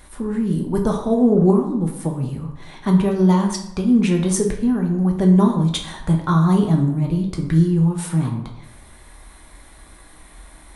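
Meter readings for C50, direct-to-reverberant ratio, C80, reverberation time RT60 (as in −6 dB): 7.0 dB, 1.0 dB, 9.5 dB, 0.80 s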